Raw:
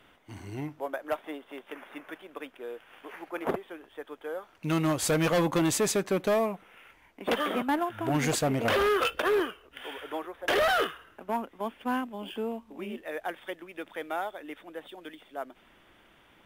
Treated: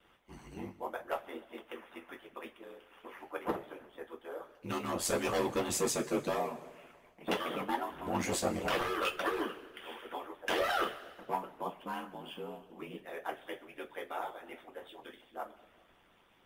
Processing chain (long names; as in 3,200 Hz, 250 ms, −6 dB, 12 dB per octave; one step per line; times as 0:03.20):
ring modulation 45 Hz
coupled-rooms reverb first 0.25 s, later 1.8 s, from −18 dB, DRR −2 dB
harmonic and percussive parts rebalanced harmonic −11 dB
level −3.5 dB